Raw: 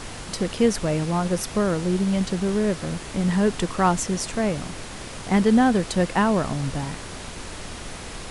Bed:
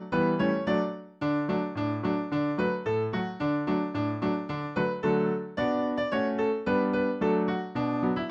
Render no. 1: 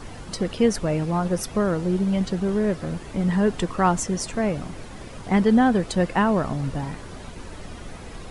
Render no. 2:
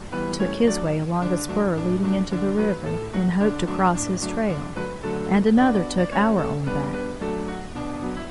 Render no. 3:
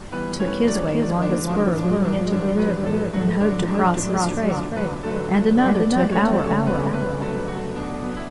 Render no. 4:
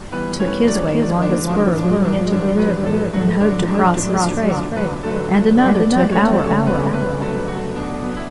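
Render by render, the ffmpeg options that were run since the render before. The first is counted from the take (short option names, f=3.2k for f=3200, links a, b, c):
-af "afftdn=nr=10:nf=-37"
-filter_complex "[1:a]volume=-2.5dB[a];[0:a][a]amix=inputs=2:normalize=0"
-filter_complex "[0:a]asplit=2[a][b];[b]adelay=29,volume=-12dB[c];[a][c]amix=inputs=2:normalize=0,asplit=2[d][e];[e]adelay=346,lowpass=f=1.9k:p=1,volume=-3dB,asplit=2[f][g];[g]adelay=346,lowpass=f=1.9k:p=1,volume=0.49,asplit=2[h][i];[i]adelay=346,lowpass=f=1.9k:p=1,volume=0.49,asplit=2[j][k];[k]adelay=346,lowpass=f=1.9k:p=1,volume=0.49,asplit=2[l][m];[m]adelay=346,lowpass=f=1.9k:p=1,volume=0.49,asplit=2[n][o];[o]adelay=346,lowpass=f=1.9k:p=1,volume=0.49[p];[d][f][h][j][l][n][p]amix=inputs=7:normalize=0"
-af "volume=4dB"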